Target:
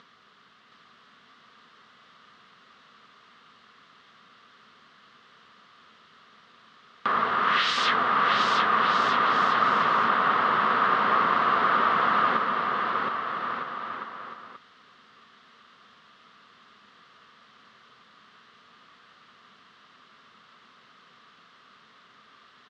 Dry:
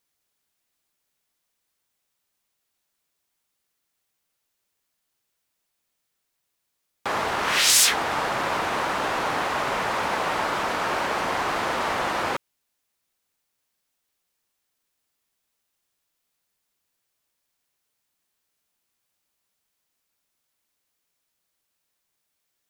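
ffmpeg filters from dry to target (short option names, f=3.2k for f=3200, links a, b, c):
-af "acompressor=mode=upward:threshold=-26dB:ratio=2.5,highpass=170,equalizer=f=220:t=q:w=4:g=5,equalizer=f=320:t=q:w=4:g=-9,equalizer=f=580:t=q:w=4:g=-7,equalizer=f=840:t=q:w=4:g=-10,equalizer=f=1.2k:t=q:w=4:g=10,equalizer=f=2.4k:t=q:w=4:g=-9,lowpass=f=3.4k:w=0.5412,lowpass=f=3.4k:w=1.3066,aecho=1:1:720|1260|1665|1969|2197:0.631|0.398|0.251|0.158|0.1"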